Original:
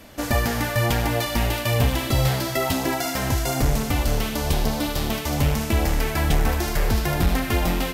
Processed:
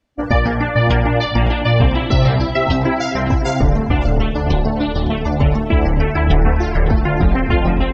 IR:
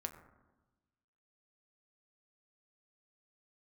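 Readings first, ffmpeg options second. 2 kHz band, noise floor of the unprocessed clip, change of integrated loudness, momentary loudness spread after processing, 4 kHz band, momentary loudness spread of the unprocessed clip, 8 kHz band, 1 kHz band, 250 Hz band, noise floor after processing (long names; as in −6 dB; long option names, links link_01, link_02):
+5.0 dB, −29 dBFS, +6.5 dB, 3 LU, +1.5 dB, 3 LU, −11.5 dB, +6.5 dB, +7.5 dB, −22 dBFS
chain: -filter_complex "[0:a]lowpass=7600,afftdn=noise_reduction=34:noise_floor=-29,asplit=2[link_01][link_02];[link_02]adelay=559.8,volume=-9dB,highshelf=frequency=4000:gain=-12.6[link_03];[link_01][link_03]amix=inputs=2:normalize=0,volume=7dB"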